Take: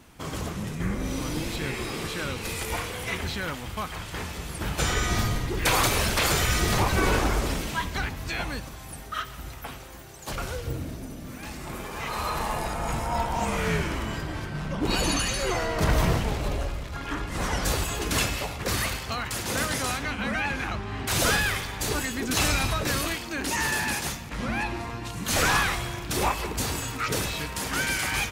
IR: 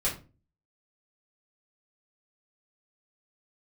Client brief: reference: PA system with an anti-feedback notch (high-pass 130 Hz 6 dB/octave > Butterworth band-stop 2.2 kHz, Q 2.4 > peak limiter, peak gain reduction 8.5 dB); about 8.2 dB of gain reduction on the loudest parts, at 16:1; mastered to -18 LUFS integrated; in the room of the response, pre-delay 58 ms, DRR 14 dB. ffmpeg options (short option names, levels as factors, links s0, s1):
-filter_complex "[0:a]acompressor=threshold=0.0501:ratio=16,asplit=2[s0][s1];[1:a]atrim=start_sample=2205,adelay=58[s2];[s1][s2]afir=irnorm=-1:irlink=0,volume=0.0841[s3];[s0][s3]amix=inputs=2:normalize=0,highpass=f=130:p=1,asuperstop=centerf=2200:order=8:qfactor=2.4,volume=7.08,alimiter=limit=0.376:level=0:latency=1"